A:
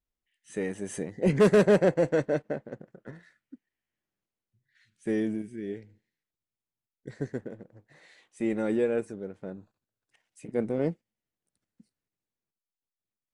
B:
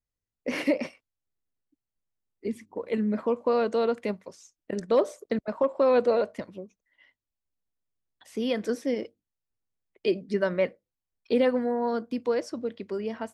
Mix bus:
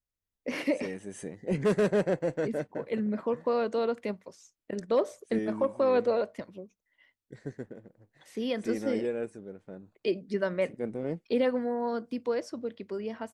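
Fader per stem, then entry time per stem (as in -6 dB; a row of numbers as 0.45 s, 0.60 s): -5.5 dB, -3.5 dB; 0.25 s, 0.00 s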